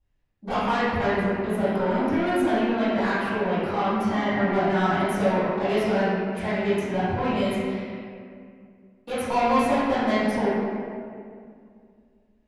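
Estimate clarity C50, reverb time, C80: −4.5 dB, 2.2 s, −1.5 dB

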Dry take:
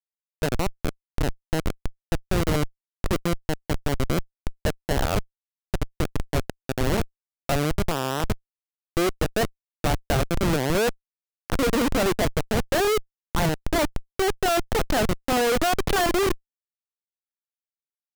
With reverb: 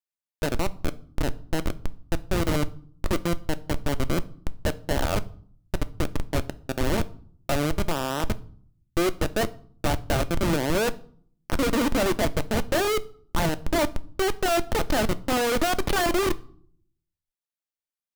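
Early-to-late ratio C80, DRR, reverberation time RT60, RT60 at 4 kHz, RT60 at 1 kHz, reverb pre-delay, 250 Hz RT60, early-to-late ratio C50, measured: 25.0 dB, 11.0 dB, 0.55 s, 0.40 s, 0.55 s, 3 ms, 0.75 s, 21.0 dB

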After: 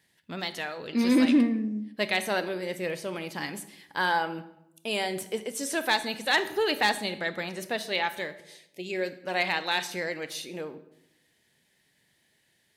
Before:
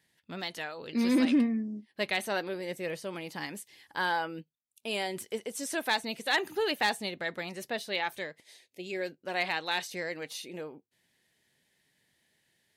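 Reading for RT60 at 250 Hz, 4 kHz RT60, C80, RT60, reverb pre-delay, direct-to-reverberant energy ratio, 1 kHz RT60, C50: 1.0 s, 0.60 s, 16.5 dB, 0.85 s, 25 ms, 11.5 dB, 0.80 s, 13.5 dB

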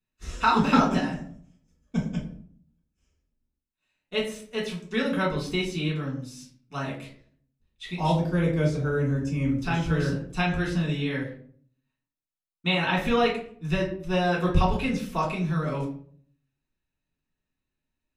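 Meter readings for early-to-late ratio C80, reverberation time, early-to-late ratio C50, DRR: 11.5 dB, 0.55 s, 7.0 dB, −4.5 dB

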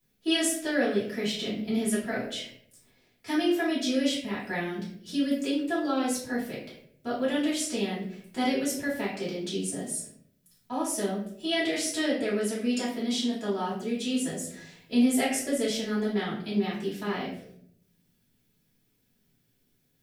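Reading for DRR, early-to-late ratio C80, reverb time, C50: −10.0 dB, 8.5 dB, 0.65 s, 4.0 dB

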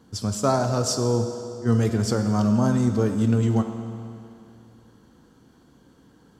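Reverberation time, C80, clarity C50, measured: 2.6 s, 8.0 dB, 7.0 dB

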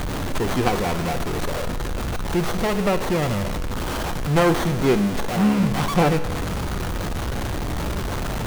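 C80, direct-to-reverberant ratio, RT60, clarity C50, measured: 13.0 dB, 9.5 dB, 1.5 s, 11.5 dB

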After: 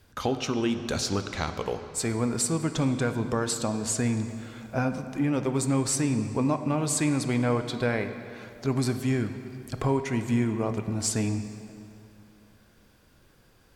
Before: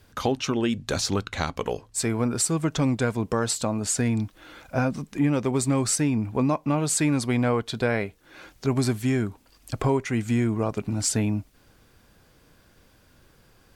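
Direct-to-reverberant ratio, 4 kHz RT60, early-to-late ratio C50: 8.0 dB, 2.0 s, 9.0 dB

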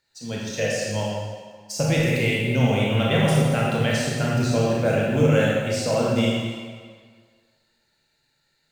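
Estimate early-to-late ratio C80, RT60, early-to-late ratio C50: 0.5 dB, 1.8 s, −2.5 dB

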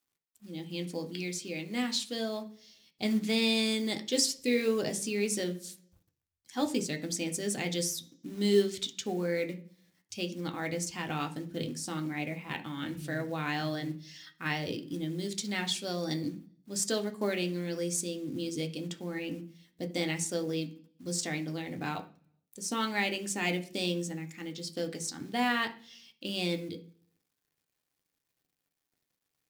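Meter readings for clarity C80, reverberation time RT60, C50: 19.5 dB, 0.45 s, 14.5 dB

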